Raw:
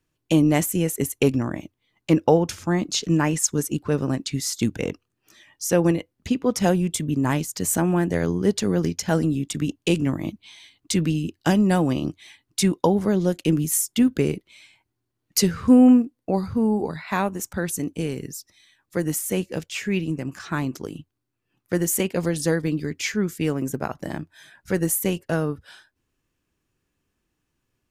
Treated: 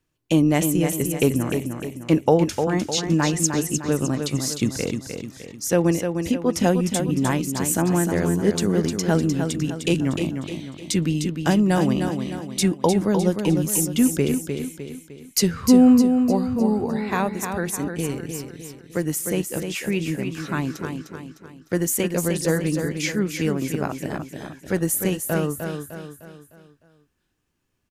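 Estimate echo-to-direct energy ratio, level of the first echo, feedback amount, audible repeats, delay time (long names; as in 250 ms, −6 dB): −5.5 dB, −6.5 dB, 45%, 5, 304 ms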